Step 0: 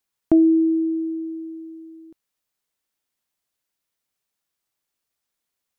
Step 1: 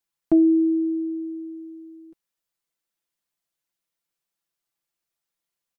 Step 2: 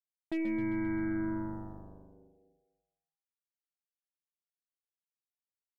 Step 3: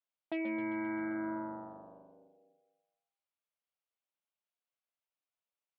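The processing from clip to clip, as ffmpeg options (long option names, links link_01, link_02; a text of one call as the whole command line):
ffmpeg -i in.wav -af "aecho=1:1:5.9:0.65,volume=-5.5dB" out.wav
ffmpeg -i in.wav -filter_complex "[0:a]areverse,acompressor=threshold=-27dB:ratio=10,areverse,aeval=exprs='0.0596*(cos(1*acos(clip(val(0)/0.0596,-1,1)))-cos(1*PI/2))+0.00531*(cos(2*acos(clip(val(0)/0.0596,-1,1)))-cos(2*PI/2))+0.00211*(cos(5*acos(clip(val(0)/0.0596,-1,1)))-cos(5*PI/2))+0.00266*(cos(6*acos(clip(val(0)/0.0596,-1,1)))-cos(6*PI/2))+0.0106*(cos(7*acos(clip(val(0)/0.0596,-1,1)))-cos(7*PI/2))':channel_layout=same,asplit=9[link_01][link_02][link_03][link_04][link_05][link_06][link_07][link_08][link_09];[link_02]adelay=131,afreqshift=-100,volume=-9dB[link_10];[link_03]adelay=262,afreqshift=-200,volume=-13dB[link_11];[link_04]adelay=393,afreqshift=-300,volume=-17dB[link_12];[link_05]adelay=524,afreqshift=-400,volume=-21dB[link_13];[link_06]adelay=655,afreqshift=-500,volume=-25.1dB[link_14];[link_07]adelay=786,afreqshift=-600,volume=-29.1dB[link_15];[link_08]adelay=917,afreqshift=-700,volume=-33.1dB[link_16];[link_09]adelay=1048,afreqshift=-800,volume=-37.1dB[link_17];[link_01][link_10][link_11][link_12][link_13][link_14][link_15][link_16][link_17]amix=inputs=9:normalize=0,volume=-4.5dB" out.wav
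ffmpeg -i in.wav -af "highpass=350,equalizer=frequency=370:width_type=q:width=4:gain=-9,equalizer=frequency=610:width_type=q:width=4:gain=4,equalizer=frequency=1800:width_type=q:width=4:gain=-7,lowpass=frequency=3300:width=0.5412,lowpass=frequency=3300:width=1.3066,volume=4dB" out.wav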